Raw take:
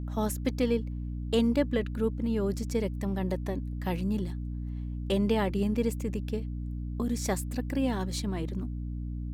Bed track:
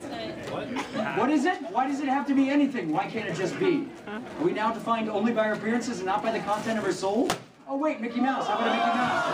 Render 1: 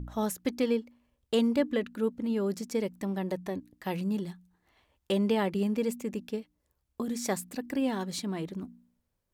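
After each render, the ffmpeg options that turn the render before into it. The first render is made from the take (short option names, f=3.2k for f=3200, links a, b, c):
-af "bandreject=f=60:t=h:w=4,bandreject=f=120:t=h:w=4,bandreject=f=180:t=h:w=4,bandreject=f=240:t=h:w=4,bandreject=f=300:t=h:w=4"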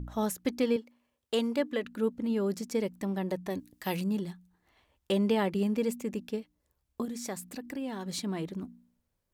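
-filter_complex "[0:a]asettb=1/sr,asplit=3[a][b][c];[a]atrim=end=0.764[d];[b]atrim=start=0.76:end=1.85,asetpts=PTS-STARTPTS,afade=t=in:d=0.004:c=qsin,afade=t=out:st=1.086:d=0.004:c=qsin,highpass=f=360:p=1[e];[c]atrim=start=1.846[f];[d][e]acrossfade=d=0.004:c1=hsin:c2=qsin[g];[g][f]acrossfade=d=0.004:c1=qsin:c2=hsin,asettb=1/sr,asplit=3[h][i][j];[h]atrim=end=3.504[k];[i]atrim=start=3.5:end=4.04,asetpts=PTS-STARTPTS,afade=t=in:d=0.004:c=qsin,afade=t=out:st=0.536:d=0.004:c=qsin,highshelf=f=3.2k:g=10[l];[j]atrim=start=4.036[m];[k][l]acrossfade=d=0.004:c1=hsin:c2=qsin[n];[n][m]acrossfade=d=0.004:c1=qsin:c2=hsin,asettb=1/sr,asplit=3[o][p][q];[o]atrim=end=7.054[r];[p]atrim=start=7.05:end=8.06,asetpts=PTS-STARTPTS,afade=t=in:d=0.004:c=qsin,afade=t=out:st=1.006:d=0.004:c=qsin,acompressor=threshold=-38dB:ratio=2:attack=3.2:release=140:knee=1:detection=peak[s];[q]atrim=start=8.056[t];[r][s]acrossfade=d=0.004:c1=hsin:c2=qsin[u];[u][t]acrossfade=d=0.004:c1=qsin:c2=hsin"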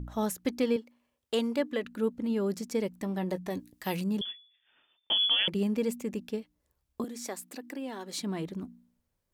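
-filter_complex "[0:a]asettb=1/sr,asplit=3[a][b][c];[a]atrim=end=3.024[d];[b]atrim=start=3.02:end=3.71,asetpts=PTS-STARTPTS,afade=t=in:d=0.004:c=qsin,afade=t=out:st=0.686:d=0.004:c=qsin,asplit=2[e][f];[f]adelay=17,volume=-11.5dB[g];[e][g]amix=inputs=2:normalize=0,atrim=end_sample=30429[h];[c]atrim=start=3.706[i];[d][h]acrossfade=d=0.004:c1=hsin:c2=qsin[j];[j][i]acrossfade=d=0.004:c1=qsin:c2=hsin,asettb=1/sr,asplit=3[k][l][m];[k]atrim=end=4.214[n];[l]atrim=start=4.21:end=5.48,asetpts=PTS-STARTPTS,afade=t=in:d=0.004:c=qsin,afade=t=out:st=1.266:d=0.004:c=qsin,lowpass=f=3.1k:t=q:w=0.5098,lowpass=f=3.1k:t=q:w=0.6013,lowpass=f=3.1k:t=q:w=0.9,lowpass=f=3.1k:t=q:w=2.563,afreqshift=-3600[o];[m]atrim=start=5.476[p];[n][o]acrossfade=d=0.004:c1=hsin:c2=qsin[q];[q][p]acrossfade=d=0.004:c1=qsin:c2=hsin,asettb=1/sr,asplit=3[r][s][t];[r]atrim=end=7.044[u];[s]atrim=start=7.04:end=8.21,asetpts=PTS-STARTPTS,afade=t=in:d=0.004:c=qsin,afade=t=out:st=1.166:d=0.004:c=qsin,highpass=f=250:w=0.5412,highpass=f=250:w=1.3066[v];[t]atrim=start=8.206[w];[u][v]acrossfade=d=0.004:c1=hsin:c2=qsin[x];[x][w]acrossfade=d=0.004:c1=qsin:c2=hsin"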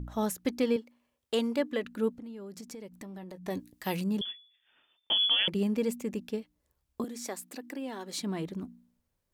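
-filter_complex "[0:a]asettb=1/sr,asplit=3[a][b][c];[a]atrim=end=2.124[d];[b]atrim=start=2.12:end=3.48,asetpts=PTS-STARTPTS,afade=t=in:d=0.004:c=qsin,afade=t=out:st=1.356:d=0.004:c=qsin,acompressor=threshold=-40dB:ratio=12:attack=3.2:release=140:knee=1:detection=peak[e];[c]atrim=start=3.476[f];[d][e]acrossfade=d=0.004:c1=hsin:c2=qsin[g];[g][f]acrossfade=d=0.004:c1=qsin:c2=hsin"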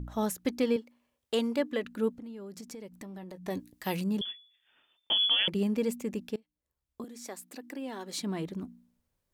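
-filter_complex "[0:a]asplit=2[a][b];[a]atrim=end=6.36,asetpts=PTS-STARTPTS,afade=t=out:st=6.356:d=0.004:c=hsin:silence=0.0749894[c];[b]atrim=start=6.36,asetpts=PTS-STARTPTS,afade=t=in:d=1.61:silence=0.0749894[d];[c][d]concat=n=2:v=0:a=1"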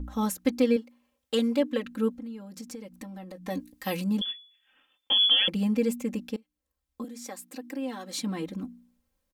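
-af "bandreject=f=670:w=12,aecho=1:1:3.8:0.94"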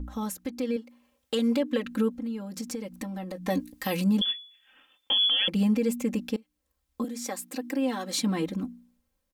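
-af "alimiter=limit=-23dB:level=0:latency=1:release=191,dynaudnorm=f=130:g=13:m=6dB"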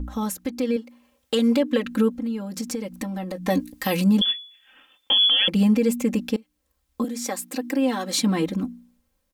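-af "volume=5.5dB"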